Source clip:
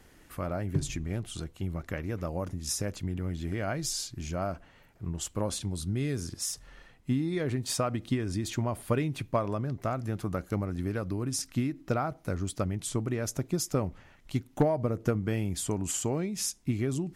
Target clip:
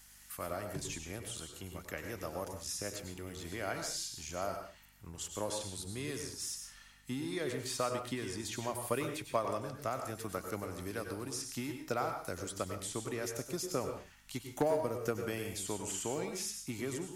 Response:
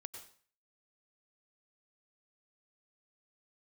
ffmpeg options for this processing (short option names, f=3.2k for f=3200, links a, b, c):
-filter_complex "[0:a]acrossover=split=3100[a][b];[b]acompressor=threshold=-49dB:ratio=4:attack=1:release=60[c];[a][c]amix=inputs=2:normalize=0,bass=f=250:g=-12,treble=f=4k:g=13,acrossover=split=180|800|5100[d][e][f][g];[e]aeval=exprs='sgn(val(0))*max(abs(val(0))-0.00266,0)':c=same[h];[d][h][f][g]amix=inputs=4:normalize=0,aeval=exprs='val(0)+0.000708*(sin(2*PI*50*n/s)+sin(2*PI*2*50*n/s)/2+sin(2*PI*3*50*n/s)/3+sin(2*PI*4*50*n/s)/4+sin(2*PI*5*50*n/s)/5)':c=same[i];[1:a]atrim=start_sample=2205,afade=t=out:st=0.29:d=0.01,atrim=end_sample=13230[j];[i][j]afir=irnorm=-1:irlink=0,volume=2dB"